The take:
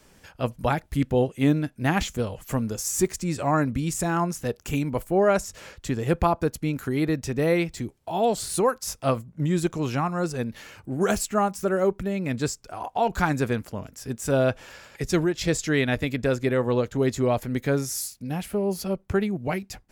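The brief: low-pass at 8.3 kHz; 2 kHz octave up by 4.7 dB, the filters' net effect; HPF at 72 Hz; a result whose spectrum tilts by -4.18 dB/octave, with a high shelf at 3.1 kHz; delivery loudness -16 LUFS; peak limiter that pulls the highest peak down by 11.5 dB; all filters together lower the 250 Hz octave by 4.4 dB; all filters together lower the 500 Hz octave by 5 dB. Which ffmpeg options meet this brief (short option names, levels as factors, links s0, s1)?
-af "highpass=72,lowpass=8300,equalizer=f=250:t=o:g=-4.5,equalizer=f=500:t=o:g=-5.5,equalizer=f=2000:t=o:g=5,highshelf=f=3100:g=4,volume=4.73,alimiter=limit=0.631:level=0:latency=1"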